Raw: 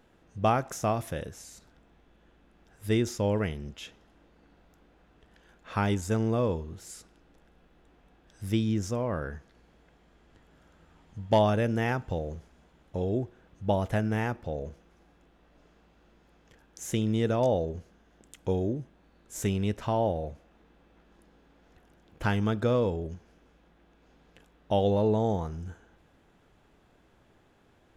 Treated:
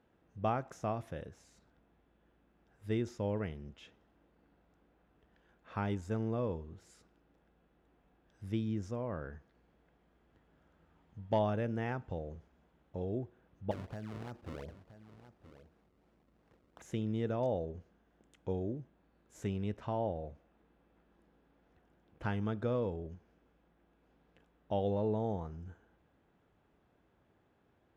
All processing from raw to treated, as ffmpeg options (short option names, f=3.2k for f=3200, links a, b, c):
-filter_complex "[0:a]asettb=1/sr,asplit=3[a][b][c];[a]atrim=end=13.714[d];[b]atrim=start=13.71:end=16.82,asetpts=PTS-STARTPTS,afade=t=in:d=0.004:c=qsin,afade=t=out:st=3.106:d=0.004:c=qsin,acrusher=samples=31:mix=1:aa=0.000001:lfo=1:lforange=49.6:lforate=2.8,acompressor=threshold=-30dB:ratio=12:attack=3.2:release=140:knee=1:detection=peak,aecho=1:1:973:0.211,atrim=end_sample=137151[e];[c]atrim=start=16.816[f];[d][e]acrossfade=d=0.004:c1=hsin:c2=qsin[g];[g][f]acrossfade=d=0.004:c1=qsin:c2=hsin,highpass=49,aemphasis=mode=reproduction:type=75kf,volume=-8dB"